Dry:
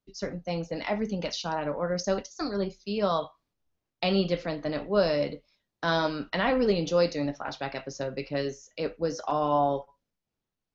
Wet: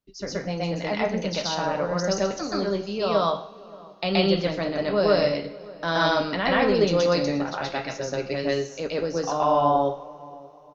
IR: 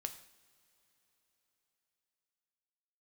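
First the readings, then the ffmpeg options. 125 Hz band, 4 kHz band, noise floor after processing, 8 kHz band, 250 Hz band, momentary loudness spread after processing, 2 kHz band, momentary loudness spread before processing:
+4.0 dB, +6.0 dB, -46 dBFS, n/a, +4.0 dB, 12 LU, +6.0 dB, 10 LU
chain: -filter_complex "[0:a]asplit=2[a][b];[b]adelay=578,lowpass=f=1.2k:p=1,volume=-21dB,asplit=2[c][d];[d]adelay=578,lowpass=f=1.2k:p=1,volume=0.39,asplit=2[e][f];[f]adelay=578,lowpass=f=1.2k:p=1,volume=0.39[g];[a][c][e][g]amix=inputs=4:normalize=0,asplit=2[h][i];[1:a]atrim=start_sample=2205,lowshelf=f=340:g=-4.5,adelay=125[j];[i][j]afir=irnorm=-1:irlink=0,volume=6.5dB[k];[h][k]amix=inputs=2:normalize=0"

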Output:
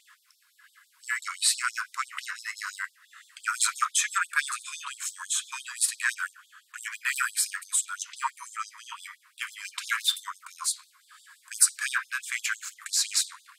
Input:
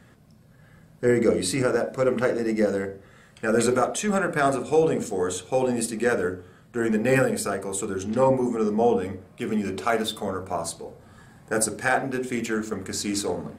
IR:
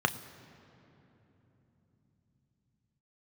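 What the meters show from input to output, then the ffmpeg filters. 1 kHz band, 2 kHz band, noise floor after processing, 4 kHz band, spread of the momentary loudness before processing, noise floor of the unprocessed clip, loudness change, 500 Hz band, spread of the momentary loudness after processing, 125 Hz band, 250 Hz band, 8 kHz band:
-6.0 dB, +0.5 dB, -65 dBFS, +5.5 dB, 9 LU, -53 dBFS, -4.0 dB, under -40 dB, 14 LU, under -40 dB, under -40 dB, +5.5 dB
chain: -af "lowshelf=f=430:g=6,acontrast=41,afftfilt=real='re*gte(b*sr/1024,920*pow(3400/920,0.5+0.5*sin(2*PI*5.9*pts/sr)))':imag='im*gte(b*sr/1024,920*pow(3400/920,0.5+0.5*sin(2*PI*5.9*pts/sr)))':win_size=1024:overlap=0.75"

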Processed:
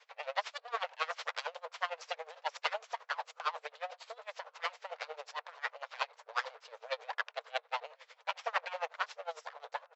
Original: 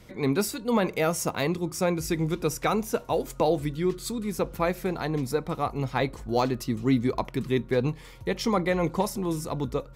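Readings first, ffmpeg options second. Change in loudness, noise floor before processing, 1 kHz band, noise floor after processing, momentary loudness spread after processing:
-12.0 dB, -46 dBFS, -7.0 dB, -72 dBFS, 8 LU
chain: -filter_complex "[0:a]aeval=exprs='abs(val(0))':c=same,afftfilt=real='re*between(b*sr/4096,440,7800)':imag='im*between(b*sr/4096,440,7800)':win_size=4096:overlap=0.75,acrossover=split=580 5700:gain=0.0794 1 0.141[a][b][c];[a][b][c]amix=inputs=3:normalize=0,asplit=2[d][e];[e]adelay=1067,lowpass=f=1.1k:p=1,volume=-23.5dB,asplit=2[f][g];[g]adelay=1067,lowpass=f=1.1k:p=1,volume=0.17[h];[f][h]amix=inputs=2:normalize=0[i];[d][i]amix=inputs=2:normalize=0,aeval=exprs='val(0)*pow(10,-23*(0.5-0.5*cos(2*PI*11*n/s))/20)':c=same,volume=1.5dB"

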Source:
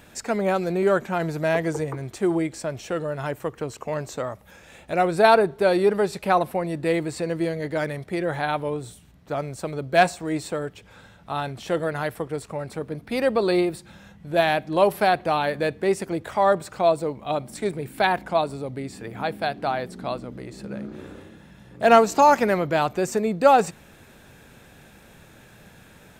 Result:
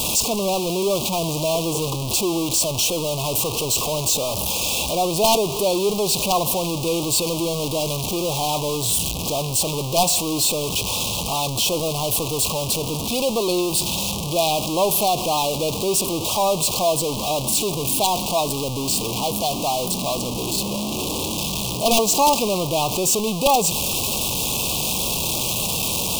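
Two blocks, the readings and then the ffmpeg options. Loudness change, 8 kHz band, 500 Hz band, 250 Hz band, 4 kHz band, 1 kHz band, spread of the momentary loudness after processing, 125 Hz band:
+3.0 dB, +20.5 dB, -0.5 dB, +1.5 dB, +15.0 dB, -0.5 dB, 5 LU, +5.0 dB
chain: -af "aeval=exprs='val(0)+0.5*0.15*sgn(val(0))':c=same,tiltshelf=f=1.4k:g=-5,aeval=exprs='(mod(2.24*val(0)+1,2)-1)/2.24':c=same,asuperstop=centerf=1700:order=12:qfactor=1.2,volume=-1dB"

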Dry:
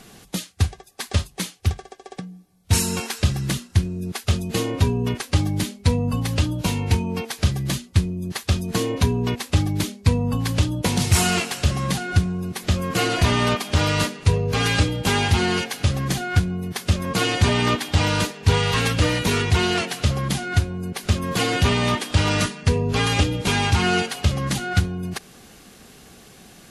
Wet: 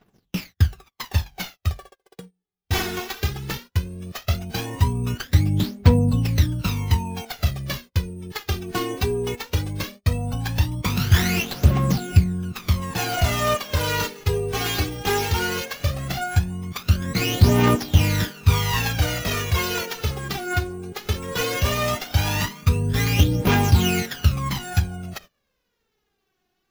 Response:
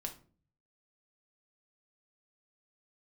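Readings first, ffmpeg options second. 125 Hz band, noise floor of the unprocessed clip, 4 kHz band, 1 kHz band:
0.0 dB, -48 dBFS, -3.0 dB, -1.5 dB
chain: -af "acrusher=samples=5:mix=1:aa=0.000001,aphaser=in_gain=1:out_gain=1:delay=2.8:decay=0.66:speed=0.17:type=triangular,agate=range=-25dB:threshold=-36dB:ratio=16:detection=peak,volume=-4.5dB"

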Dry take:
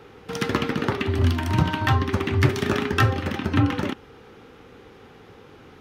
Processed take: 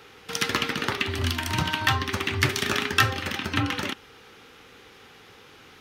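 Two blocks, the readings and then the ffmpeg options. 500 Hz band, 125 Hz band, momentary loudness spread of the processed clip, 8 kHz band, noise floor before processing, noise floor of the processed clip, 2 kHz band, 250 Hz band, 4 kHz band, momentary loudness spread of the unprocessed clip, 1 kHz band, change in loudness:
-6.0 dB, -8.0 dB, 7 LU, +7.5 dB, -49 dBFS, -51 dBFS, +2.5 dB, -7.5 dB, +6.0 dB, 7 LU, -1.5 dB, -2.5 dB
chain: -af "tiltshelf=f=1.3k:g=-8"

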